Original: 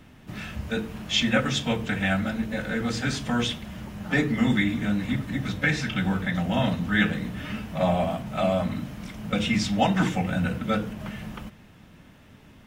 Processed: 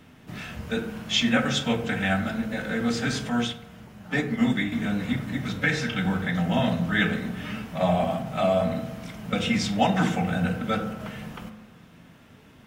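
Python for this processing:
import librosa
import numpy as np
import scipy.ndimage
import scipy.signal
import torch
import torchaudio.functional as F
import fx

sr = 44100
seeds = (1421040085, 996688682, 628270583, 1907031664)

y = fx.low_shelf(x, sr, hz=72.0, db=-10.0)
y = fx.rev_fdn(y, sr, rt60_s=1.1, lf_ratio=1.0, hf_ratio=0.35, size_ms=13.0, drr_db=7.0)
y = fx.upward_expand(y, sr, threshold_db=-32.0, expansion=1.5, at=(3.29, 4.72))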